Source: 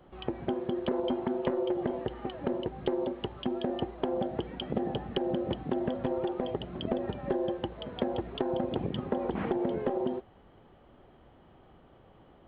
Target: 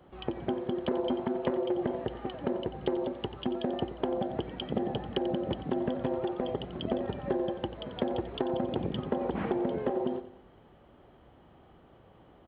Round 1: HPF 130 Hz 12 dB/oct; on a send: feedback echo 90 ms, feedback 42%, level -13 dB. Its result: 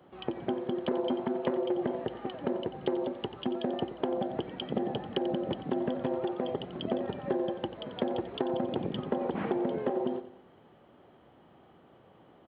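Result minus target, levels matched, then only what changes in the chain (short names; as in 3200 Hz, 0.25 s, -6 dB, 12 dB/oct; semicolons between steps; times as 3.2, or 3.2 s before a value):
125 Hz band -2.5 dB
change: HPF 33 Hz 12 dB/oct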